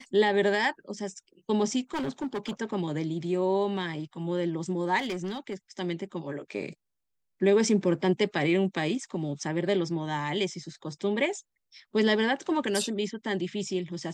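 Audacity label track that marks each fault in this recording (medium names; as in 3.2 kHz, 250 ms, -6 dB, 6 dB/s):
1.940000	2.510000	clipped -27 dBFS
4.980000	5.540000	clipped -27.5 dBFS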